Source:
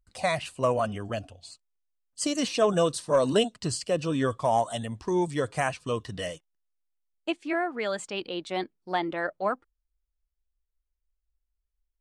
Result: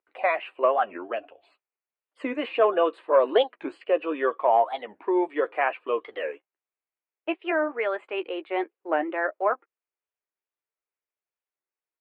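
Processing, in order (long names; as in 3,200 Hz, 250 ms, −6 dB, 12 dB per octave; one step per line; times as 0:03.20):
elliptic band-pass filter 350–2,500 Hz, stop band 40 dB
double-tracking delay 13 ms −10.5 dB
wow of a warped record 45 rpm, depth 250 cents
level +4 dB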